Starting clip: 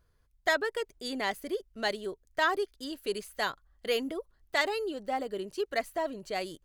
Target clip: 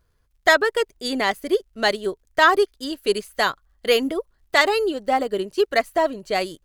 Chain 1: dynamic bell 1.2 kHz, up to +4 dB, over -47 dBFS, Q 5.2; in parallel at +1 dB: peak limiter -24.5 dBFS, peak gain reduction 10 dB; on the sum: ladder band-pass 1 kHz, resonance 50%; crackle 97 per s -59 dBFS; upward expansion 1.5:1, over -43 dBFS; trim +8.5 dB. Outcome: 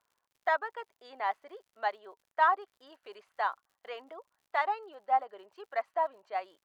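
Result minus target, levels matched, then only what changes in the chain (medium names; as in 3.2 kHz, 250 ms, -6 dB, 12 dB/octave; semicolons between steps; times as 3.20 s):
1 kHz band +4.5 dB
remove: ladder band-pass 1 kHz, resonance 50%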